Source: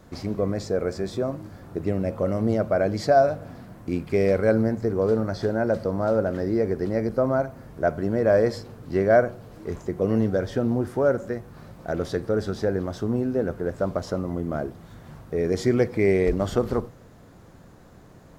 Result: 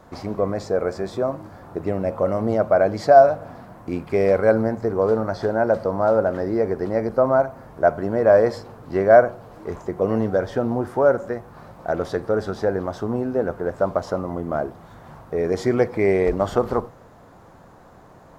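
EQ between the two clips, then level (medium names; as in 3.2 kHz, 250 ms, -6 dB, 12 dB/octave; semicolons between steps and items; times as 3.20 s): peaking EQ 890 Hz +11 dB 1.7 oct; -2.0 dB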